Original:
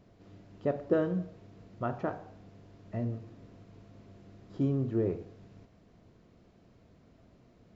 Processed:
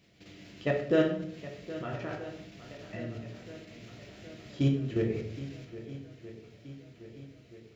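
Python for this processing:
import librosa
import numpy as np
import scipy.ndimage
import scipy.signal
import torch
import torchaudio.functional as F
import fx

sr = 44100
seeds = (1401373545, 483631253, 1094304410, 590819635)

y = fx.level_steps(x, sr, step_db=14)
y = scipy.signal.sosfilt(scipy.signal.butter(2, 52.0, 'highpass', fs=sr, output='sos'), y)
y = fx.high_shelf_res(y, sr, hz=1600.0, db=12.0, q=1.5)
y = fx.echo_swing(y, sr, ms=1278, ratio=1.5, feedback_pct=53, wet_db=-15)
y = fx.room_shoebox(y, sr, seeds[0], volume_m3=120.0, walls='mixed', distance_m=0.69)
y = y * librosa.db_to_amplitude(3.5)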